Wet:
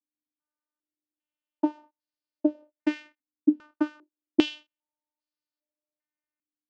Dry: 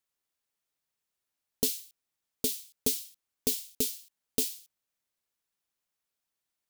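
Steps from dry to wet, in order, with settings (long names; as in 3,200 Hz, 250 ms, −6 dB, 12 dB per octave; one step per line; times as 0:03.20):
leveller curve on the samples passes 3
channel vocoder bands 8, saw 301 Hz
low-pass on a step sequencer 2.5 Hz 250–4,600 Hz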